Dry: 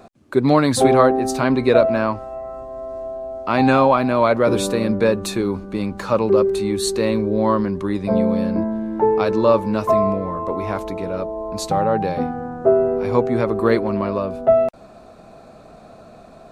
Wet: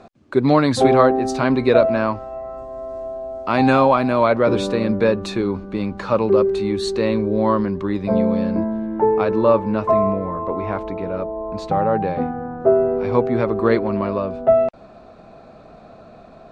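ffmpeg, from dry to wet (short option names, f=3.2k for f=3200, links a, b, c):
-af "asetnsamples=n=441:p=0,asendcmd='2.58 lowpass f 9700;4.24 lowpass f 4600;8.86 lowpass f 2700;12.6 lowpass f 4300',lowpass=5.9k"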